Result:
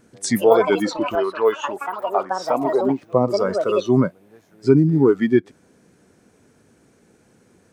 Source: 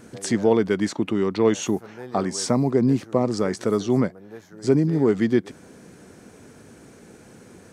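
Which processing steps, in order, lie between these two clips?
1.15–3.02 s: tone controls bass -13 dB, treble -12 dB; ever faster or slower copies 206 ms, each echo +7 st, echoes 2, each echo -6 dB; spectral noise reduction 14 dB; trim +5 dB

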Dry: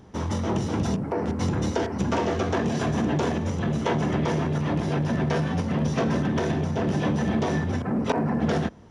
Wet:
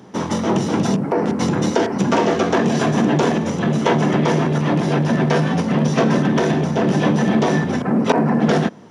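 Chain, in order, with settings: high-pass 140 Hz 24 dB/octave; trim +8.5 dB

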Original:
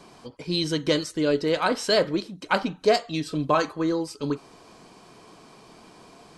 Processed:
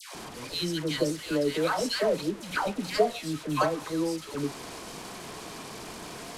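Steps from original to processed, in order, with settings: one-bit delta coder 64 kbps, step -31 dBFS; phase dispersion lows, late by 149 ms, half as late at 980 Hz; trim -4 dB

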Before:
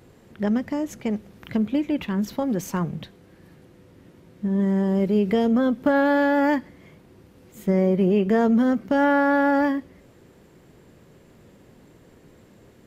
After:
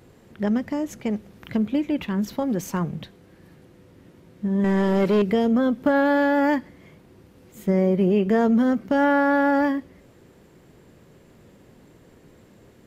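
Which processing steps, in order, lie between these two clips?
4.64–5.22 s: overdrive pedal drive 19 dB, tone 6.1 kHz, clips at -11.5 dBFS

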